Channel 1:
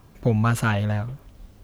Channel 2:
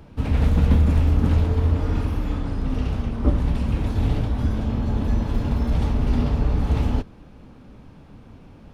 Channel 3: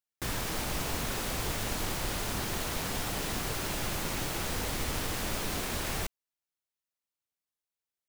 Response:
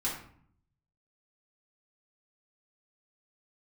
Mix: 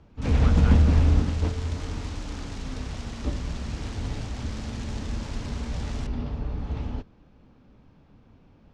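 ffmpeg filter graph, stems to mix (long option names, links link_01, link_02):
-filter_complex "[0:a]aeval=exprs='val(0)+0.00355*(sin(2*PI*50*n/s)+sin(2*PI*2*50*n/s)/2+sin(2*PI*3*50*n/s)/3+sin(2*PI*4*50*n/s)/4+sin(2*PI*5*50*n/s)/5)':channel_layout=same,volume=-14dB,asplit=2[link_01][link_02];[1:a]volume=-1dB[link_03];[2:a]aeval=exprs='(mod(22.4*val(0)+1,2)-1)/22.4':channel_layout=same,volume=-8dB[link_04];[link_02]apad=whole_len=385054[link_05];[link_03][link_05]sidechaingate=range=-9dB:threshold=-55dB:ratio=16:detection=peak[link_06];[link_01][link_06][link_04]amix=inputs=3:normalize=0,lowpass=frequency=6700:width=0.5412,lowpass=frequency=6700:width=1.3066"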